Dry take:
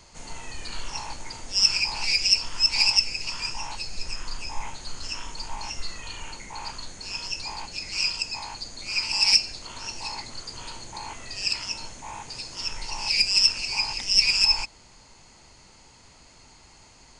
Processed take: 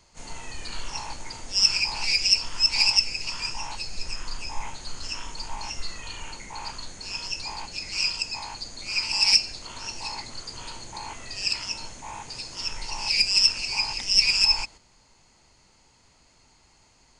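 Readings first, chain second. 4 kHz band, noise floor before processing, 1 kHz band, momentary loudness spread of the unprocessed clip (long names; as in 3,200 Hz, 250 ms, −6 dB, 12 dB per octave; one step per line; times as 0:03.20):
0.0 dB, −53 dBFS, 0.0 dB, 19 LU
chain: noise gate −43 dBFS, range −7 dB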